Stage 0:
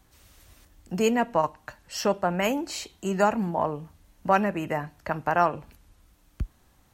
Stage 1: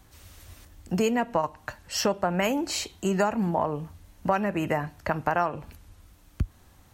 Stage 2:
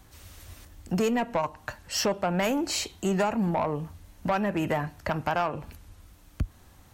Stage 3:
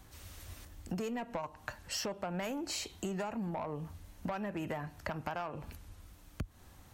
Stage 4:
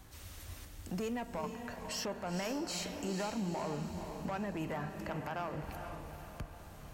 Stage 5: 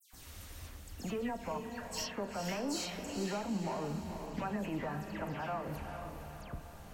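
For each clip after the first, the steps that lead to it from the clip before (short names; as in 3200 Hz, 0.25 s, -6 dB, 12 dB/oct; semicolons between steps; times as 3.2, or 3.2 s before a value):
bell 88 Hz +6.5 dB 0.43 oct; compressor 4:1, threshold -26 dBFS, peak gain reduction 10 dB; gain +4.5 dB
soft clip -20 dBFS, distortion -13 dB; gain +1.5 dB
compressor, threshold -33 dBFS, peak gain reduction 10.5 dB; gain -2.5 dB
limiter -32.5 dBFS, peak gain reduction 8.5 dB; diffused feedback echo 0.471 s, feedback 50%, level -6.5 dB; gain +1 dB
dispersion lows, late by 0.131 s, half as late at 2900 Hz; on a send at -12 dB: reverb RT60 0.25 s, pre-delay 4 ms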